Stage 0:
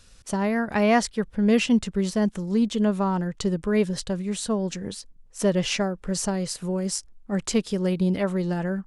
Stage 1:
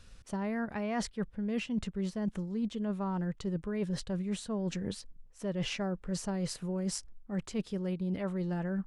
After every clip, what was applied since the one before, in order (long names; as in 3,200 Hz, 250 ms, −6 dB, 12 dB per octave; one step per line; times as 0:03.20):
bass and treble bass +3 dB, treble −7 dB
reversed playback
downward compressor 10 to 1, threshold −28 dBFS, peak gain reduction 14.5 dB
reversed playback
level −2.5 dB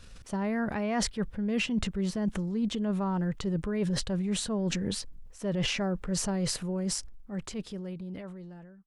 fade-out on the ending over 2.51 s
transient designer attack −1 dB, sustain +7 dB
level +4 dB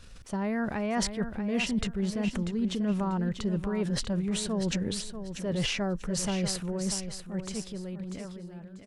repeating echo 641 ms, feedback 25%, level −9.5 dB